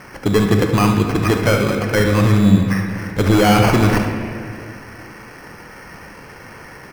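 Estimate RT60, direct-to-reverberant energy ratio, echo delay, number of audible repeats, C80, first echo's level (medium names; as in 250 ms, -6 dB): 2.3 s, 2.5 dB, 72 ms, 1, 5.5 dB, -10.5 dB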